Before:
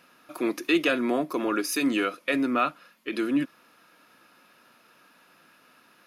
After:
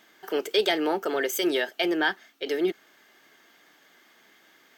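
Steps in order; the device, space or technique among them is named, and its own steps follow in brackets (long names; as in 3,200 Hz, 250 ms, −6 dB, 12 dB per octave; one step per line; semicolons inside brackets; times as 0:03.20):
nightcore (speed change +27%)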